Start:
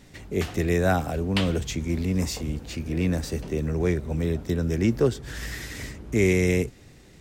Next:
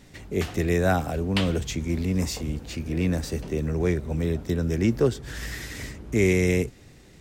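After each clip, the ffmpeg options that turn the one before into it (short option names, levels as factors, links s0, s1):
-af anull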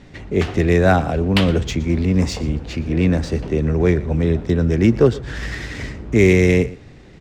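-af "adynamicsmooth=sensitivity=2.5:basefreq=4100,aecho=1:1:118:0.112,volume=2.51"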